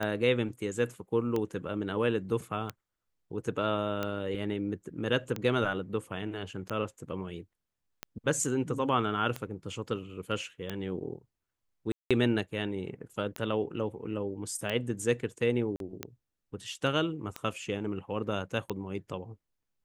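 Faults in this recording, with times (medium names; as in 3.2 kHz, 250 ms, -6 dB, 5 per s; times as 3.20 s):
tick 45 rpm -18 dBFS
11.92–12.11 s: dropout 186 ms
15.76–15.80 s: dropout 42 ms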